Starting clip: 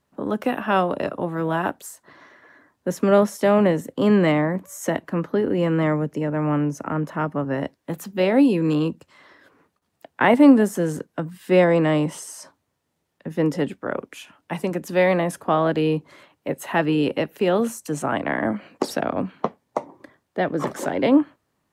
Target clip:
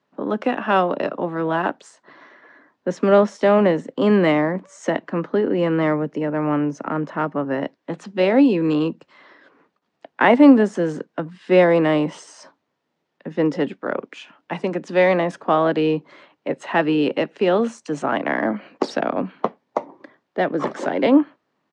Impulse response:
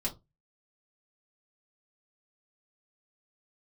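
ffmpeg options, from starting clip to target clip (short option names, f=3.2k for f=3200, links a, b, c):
-filter_complex "[0:a]aresample=22050,aresample=44100,adynamicsmooth=sensitivity=5.5:basefreq=7.3k,acrossover=split=160 6600:gain=0.0708 1 0.0891[a][b][c];[a][b][c]amix=inputs=3:normalize=0,volume=2.5dB"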